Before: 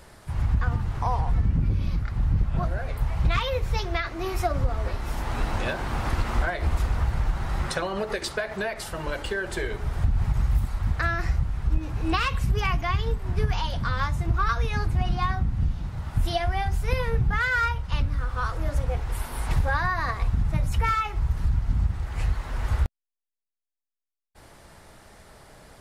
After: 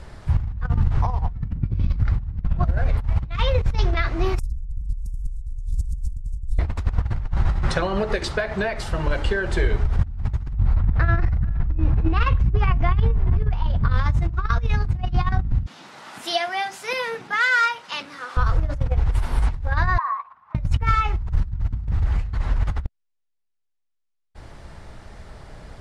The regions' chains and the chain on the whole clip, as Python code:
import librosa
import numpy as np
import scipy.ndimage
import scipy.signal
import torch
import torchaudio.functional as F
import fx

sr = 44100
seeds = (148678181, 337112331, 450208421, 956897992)

y = fx.chain(x, sr, fx.cheby2_bandstop(low_hz=220.0, high_hz=2100.0, order=4, stop_db=70),
    fx.env_flatten(amount_pct=70), at=(4.39, 6.59))
y = fx.chain(y, sr, fx.spacing_loss(db_at_10k=23),
    fx.echo_single(ms=422, db=-19.0),
    fx.over_compress(threshold_db=-26.0, ratio=-0.5), at=(10.53, 13.91))
y = fx.chain(y, sr, fx.highpass(hz=260.0, slope=24),
    fx.tilt_eq(slope=3.0), at=(15.66, 18.37))
y = fx.chain(y, sr, fx.over_compress(threshold_db=-27.0, ratio=-1.0),
    fx.ladder_bandpass(hz=1100.0, resonance_pct=85), at=(19.98, 20.55))
y = fx.low_shelf(y, sr, hz=140.0, db=10.5)
y = fx.over_compress(y, sr, threshold_db=-19.0, ratio=-0.5)
y = scipy.signal.sosfilt(scipy.signal.bessel(2, 5500.0, 'lowpass', norm='mag', fs=sr, output='sos'), y)